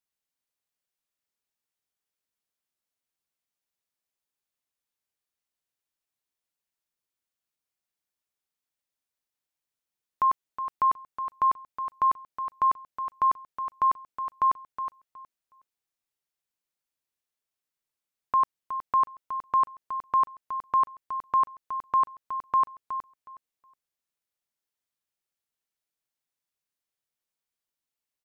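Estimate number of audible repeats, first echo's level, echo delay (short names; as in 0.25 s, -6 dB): 2, -10.0 dB, 0.367 s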